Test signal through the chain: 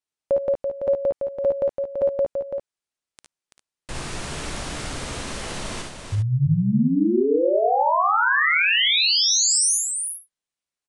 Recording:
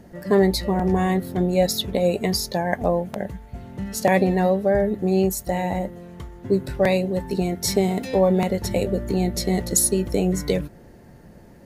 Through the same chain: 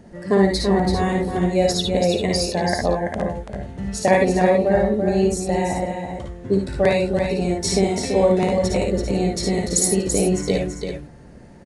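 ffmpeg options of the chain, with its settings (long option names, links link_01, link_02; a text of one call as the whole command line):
ffmpeg -i in.wav -filter_complex "[0:a]asplit=2[link_01][link_02];[link_02]aecho=0:1:57|71:0.596|0.473[link_03];[link_01][link_03]amix=inputs=2:normalize=0,aresample=22050,aresample=44100,asplit=2[link_04][link_05];[link_05]aecho=0:1:334:0.473[link_06];[link_04][link_06]amix=inputs=2:normalize=0" out.wav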